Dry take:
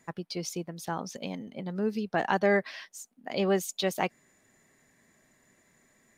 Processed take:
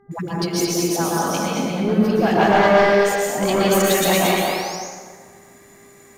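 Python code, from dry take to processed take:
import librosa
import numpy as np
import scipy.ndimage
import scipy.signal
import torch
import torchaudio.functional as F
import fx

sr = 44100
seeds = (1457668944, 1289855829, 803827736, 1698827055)

p1 = fx.high_shelf(x, sr, hz=10000.0, db=10.0)
p2 = fx.notch(p1, sr, hz=1800.0, q=15.0)
p3 = fx.dispersion(p2, sr, late='highs', ms=114.0, hz=470.0)
p4 = p3 + fx.echo_single(p3, sr, ms=227, db=-4.5, dry=0)
p5 = fx.dmg_buzz(p4, sr, base_hz=400.0, harmonics=5, level_db=-65.0, tilt_db=-8, odd_only=False)
p6 = fx.fold_sine(p5, sr, drive_db=10, ceiling_db=-12.5)
p7 = p5 + (p6 * 10.0 ** (-9.0 / 20.0))
p8 = fx.spec_paint(p7, sr, seeds[0], shape='rise', start_s=2.84, length_s=1.92, low_hz=430.0, high_hz=6900.0, level_db=-38.0)
y = fx.rev_plate(p8, sr, seeds[1], rt60_s=1.7, hf_ratio=0.6, predelay_ms=105, drr_db=-4.0)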